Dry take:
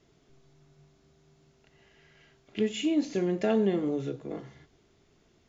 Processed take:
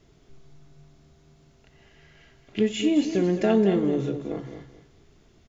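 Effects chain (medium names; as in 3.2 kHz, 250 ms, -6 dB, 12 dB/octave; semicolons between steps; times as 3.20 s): bass shelf 85 Hz +11 dB; feedback delay 216 ms, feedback 24%, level -10 dB; trim +4 dB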